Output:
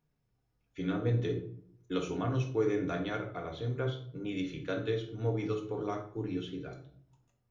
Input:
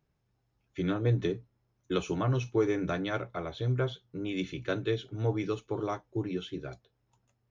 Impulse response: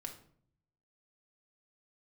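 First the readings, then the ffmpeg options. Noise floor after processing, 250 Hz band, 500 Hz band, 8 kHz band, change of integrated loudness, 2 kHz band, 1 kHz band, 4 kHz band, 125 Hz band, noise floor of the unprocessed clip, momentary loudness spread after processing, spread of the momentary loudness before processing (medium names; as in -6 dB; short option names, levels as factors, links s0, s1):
-78 dBFS, -2.0 dB, -2.0 dB, no reading, -2.5 dB, -3.5 dB, -2.5 dB, -3.5 dB, -2.5 dB, -77 dBFS, 10 LU, 10 LU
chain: -filter_complex "[1:a]atrim=start_sample=2205[s0];[0:a][s0]afir=irnorm=-1:irlink=0"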